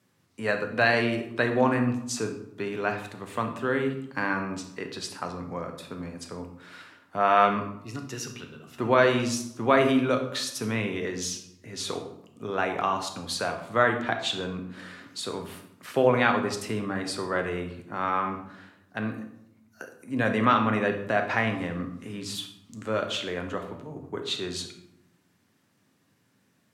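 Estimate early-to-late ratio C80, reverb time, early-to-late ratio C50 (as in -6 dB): 11.5 dB, 0.80 s, 8.5 dB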